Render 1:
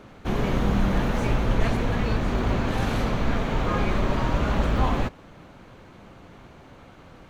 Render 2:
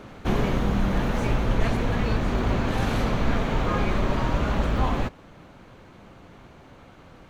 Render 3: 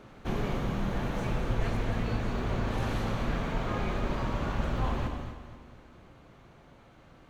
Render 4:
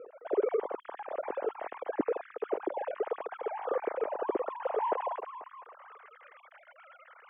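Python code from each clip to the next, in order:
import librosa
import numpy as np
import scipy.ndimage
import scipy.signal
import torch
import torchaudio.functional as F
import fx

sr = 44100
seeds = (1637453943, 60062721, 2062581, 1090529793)

y1 = fx.rider(x, sr, range_db=10, speed_s=0.5)
y2 = fx.echo_feedback(y1, sr, ms=242, feedback_pct=46, wet_db=-12)
y2 = fx.rev_gated(y2, sr, seeds[0], gate_ms=300, shape='flat', drr_db=5.0)
y2 = y2 * 10.0 ** (-8.5 / 20.0)
y3 = fx.sine_speech(y2, sr)
y3 = fx.filter_sweep_bandpass(y3, sr, from_hz=360.0, to_hz=1700.0, start_s=4.39, end_s=6.22, q=1.7)
y3 = y3 * 10.0 ** (2.0 / 20.0)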